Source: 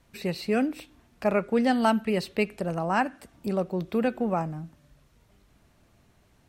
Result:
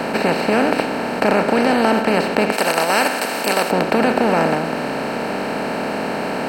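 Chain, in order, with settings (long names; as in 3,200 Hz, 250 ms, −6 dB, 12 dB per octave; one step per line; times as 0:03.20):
compressor on every frequency bin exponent 0.2
0:02.52–0:03.71: RIAA equalisation recording
in parallel at −1 dB: output level in coarse steps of 10 dB
on the sum: level −2.5 dB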